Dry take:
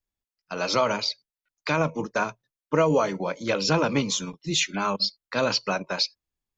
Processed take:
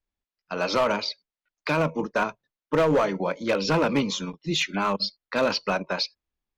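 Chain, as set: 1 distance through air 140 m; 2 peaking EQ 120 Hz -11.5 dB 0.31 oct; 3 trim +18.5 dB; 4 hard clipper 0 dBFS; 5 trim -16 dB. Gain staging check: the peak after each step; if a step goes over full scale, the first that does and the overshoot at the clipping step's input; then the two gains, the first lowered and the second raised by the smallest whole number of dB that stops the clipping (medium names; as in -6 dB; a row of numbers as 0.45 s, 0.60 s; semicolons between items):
-11.0 dBFS, -11.5 dBFS, +7.0 dBFS, 0.0 dBFS, -16.0 dBFS; step 3, 7.0 dB; step 3 +11.5 dB, step 5 -9 dB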